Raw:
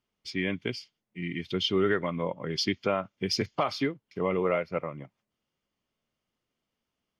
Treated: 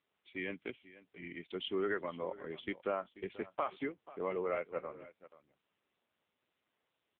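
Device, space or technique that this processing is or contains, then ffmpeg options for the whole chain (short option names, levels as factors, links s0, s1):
satellite phone: -af "highpass=310,lowpass=3000,aecho=1:1:486:0.133,volume=0.473" -ar 8000 -c:a libopencore_amrnb -b:a 6700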